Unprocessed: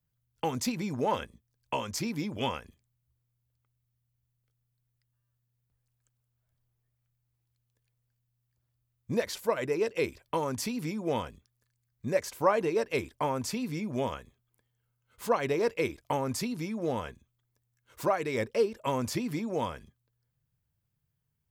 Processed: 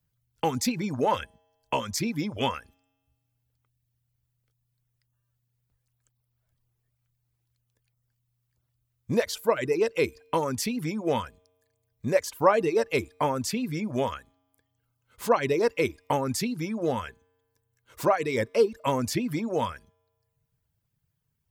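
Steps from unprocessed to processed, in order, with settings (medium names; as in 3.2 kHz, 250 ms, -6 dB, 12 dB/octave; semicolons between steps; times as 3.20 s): feedback comb 91 Hz, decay 1.6 s, harmonics odd, mix 40%; reverb removal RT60 0.68 s; trim +9 dB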